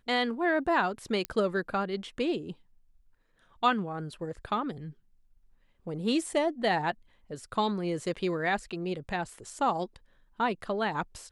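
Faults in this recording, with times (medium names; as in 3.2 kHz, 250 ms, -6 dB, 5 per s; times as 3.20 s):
1.25 s: pop -16 dBFS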